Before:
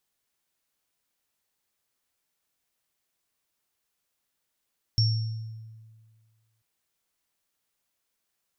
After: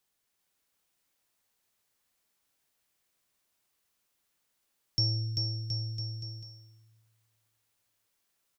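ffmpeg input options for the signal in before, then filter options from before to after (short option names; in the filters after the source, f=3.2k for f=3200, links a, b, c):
-f lavfi -i "aevalsrc='0.119*pow(10,-3*t/1.77)*sin(2*PI*111*t)+0.075*pow(10,-3*t/0.75)*sin(2*PI*5470*t)':d=1.64:s=44100"
-filter_complex "[0:a]acrossover=split=150[a][b];[a]asoftclip=type=tanh:threshold=-33.5dB[c];[c][b]amix=inputs=2:normalize=0,aecho=1:1:390|721.5|1003|1243|1446:0.631|0.398|0.251|0.158|0.1"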